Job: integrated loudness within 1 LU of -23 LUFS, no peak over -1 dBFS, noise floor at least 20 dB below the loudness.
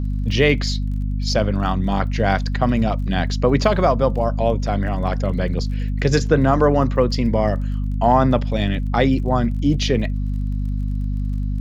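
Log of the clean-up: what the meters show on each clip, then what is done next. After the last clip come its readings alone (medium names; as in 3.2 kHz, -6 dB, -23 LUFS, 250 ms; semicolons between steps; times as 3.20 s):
tick rate 30 per s; hum 50 Hz; highest harmonic 250 Hz; hum level -19 dBFS; loudness -20.0 LUFS; peak level -2.0 dBFS; loudness target -23.0 LUFS
-> de-click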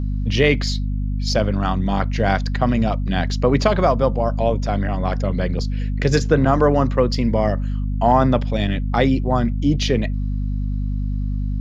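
tick rate 0.17 per s; hum 50 Hz; highest harmonic 250 Hz; hum level -19 dBFS
-> hum notches 50/100/150/200/250 Hz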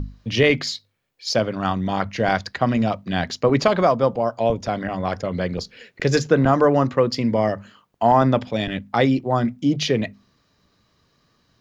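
hum not found; loudness -21.0 LUFS; peak level -3.0 dBFS; loudness target -23.0 LUFS
-> trim -2 dB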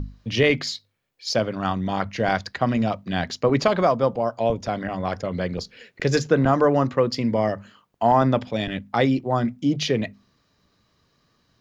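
loudness -23.0 LUFS; peak level -5.0 dBFS; noise floor -67 dBFS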